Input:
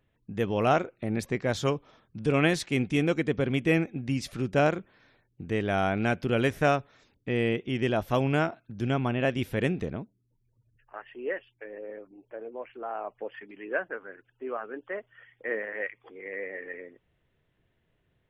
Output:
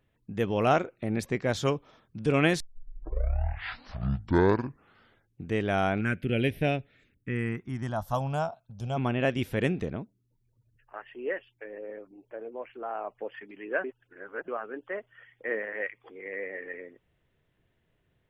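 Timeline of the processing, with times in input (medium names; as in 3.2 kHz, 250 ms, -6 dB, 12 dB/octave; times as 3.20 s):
2.60 s: tape start 2.88 s
6.00–8.96 s: phase shifter stages 4, 0.5 Hz -> 0.1 Hz, lowest notch 310–1200 Hz
13.84–14.48 s: reverse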